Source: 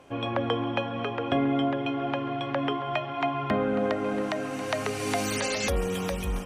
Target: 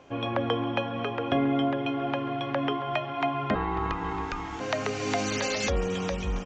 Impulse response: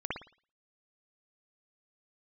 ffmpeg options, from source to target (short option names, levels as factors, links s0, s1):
-filter_complex "[0:a]asplit=3[s0][s1][s2];[s0]afade=t=out:st=3.54:d=0.02[s3];[s1]aeval=exprs='val(0)*sin(2*PI*590*n/s)':c=same,afade=t=in:st=3.54:d=0.02,afade=t=out:st=4.59:d=0.02[s4];[s2]afade=t=in:st=4.59:d=0.02[s5];[s3][s4][s5]amix=inputs=3:normalize=0,aresample=16000,aresample=44100"